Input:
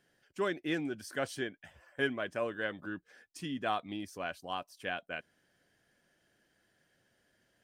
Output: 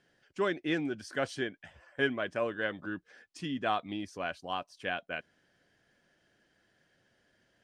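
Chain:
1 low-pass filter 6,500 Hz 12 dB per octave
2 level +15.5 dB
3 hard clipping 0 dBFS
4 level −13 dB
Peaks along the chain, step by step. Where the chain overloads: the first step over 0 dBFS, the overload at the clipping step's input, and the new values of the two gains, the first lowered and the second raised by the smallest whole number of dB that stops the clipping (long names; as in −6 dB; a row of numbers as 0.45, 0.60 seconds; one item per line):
−18.5, −3.0, −3.0, −16.0 dBFS
no step passes full scale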